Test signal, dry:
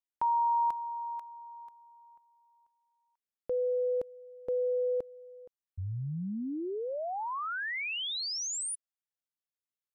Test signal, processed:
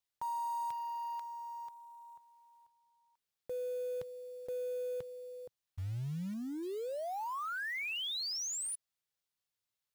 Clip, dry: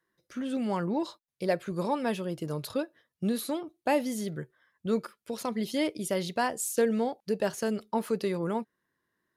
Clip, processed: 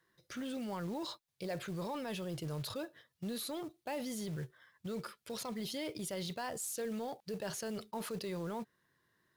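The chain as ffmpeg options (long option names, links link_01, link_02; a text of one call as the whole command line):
ffmpeg -i in.wav -af "equalizer=frequency=125:width_type=o:width=1:gain=6,equalizer=frequency=250:width_type=o:width=1:gain=-4,equalizer=frequency=4000:width_type=o:width=1:gain=4,areverse,acompressor=threshold=-42dB:ratio=4:attack=0.62:release=41:knee=6:detection=peak,areverse,acrusher=bits=5:mode=log:mix=0:aa=0.000001,volume=3.5dB" out.wav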